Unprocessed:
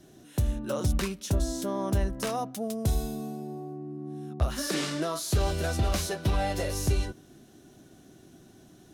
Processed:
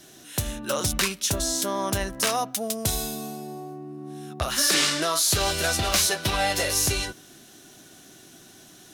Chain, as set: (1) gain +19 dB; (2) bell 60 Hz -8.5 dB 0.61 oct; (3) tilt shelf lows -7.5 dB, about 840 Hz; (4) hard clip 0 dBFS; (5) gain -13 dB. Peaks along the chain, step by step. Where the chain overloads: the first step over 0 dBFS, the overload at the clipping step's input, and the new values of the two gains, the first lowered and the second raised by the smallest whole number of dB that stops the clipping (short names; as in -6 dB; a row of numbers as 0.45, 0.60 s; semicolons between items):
+3.0, +2.5, +6.5, 0.0, -13.0 dBFS; step 1, 6.5 dB; step 1 +12 dB, step 5 -6 dB